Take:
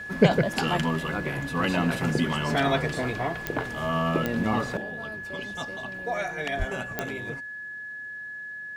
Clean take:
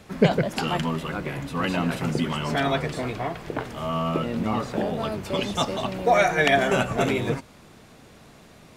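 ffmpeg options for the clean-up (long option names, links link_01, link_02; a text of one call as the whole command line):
ffmpeg -i in.wav -filter_complex "[0:a]adeclick=threshold=4,bandreject=frequency=1700:width=30,asplit=3[link_01][link_02][link_03];[link_01]afade=type=out:start_time=6.58:duration=0.02[link_04];[link_02]highpass=frequency=140:width=0.5412,highpass=frequency=140:width=1.3066,afade=type=in:start_time=6.58:duration=0.02,afade=type=out:start_time=6.7:duration=0.02[link_05];[link_03]afade=type=in:start_time=6.7:duration=0.02[link_06];[link_04][link_05][link_06]amix=inputs=3:normalize=0,asetnsamples=nb_out_samples=441:pad=0,asendcmd='4.77 volume volume 11.5dB',volume=0dB" out.wav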